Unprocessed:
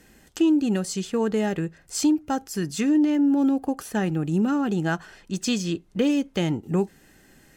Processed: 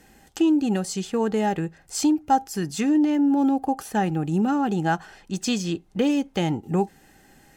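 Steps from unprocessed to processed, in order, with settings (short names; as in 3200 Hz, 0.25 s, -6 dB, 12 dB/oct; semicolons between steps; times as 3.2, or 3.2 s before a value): bell 800 Hz +11 dB 0.2 oct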